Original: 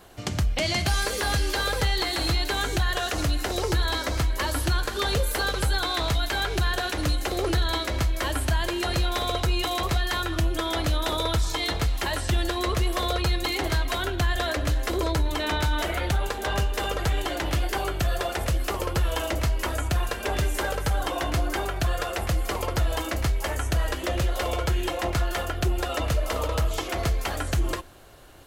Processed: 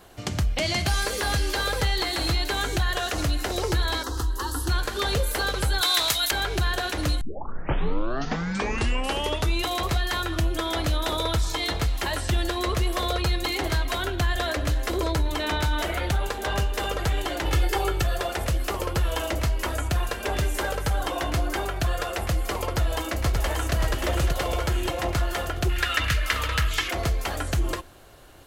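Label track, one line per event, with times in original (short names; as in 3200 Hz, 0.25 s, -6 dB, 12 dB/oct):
4.030000	4.690000	fixed phaser centre 610 Hz, stages 6
5.810000	6.310000	tilt +4 dB/oct
7.210000	7.210000	tape start 2.45 s
17.450000	18.030000	comb 2.3 ms, depth 73%
22.660000	23.740000	echo throw 0.58 s, feedback 55%, level -4 dB
25.690000	26.910000	EQ curve 130 Hz 0 dB, 630 Hz -10 dB, 1000 Hz -2 dB, 1700 Hz +12 dB, 7600 Hz +2 dB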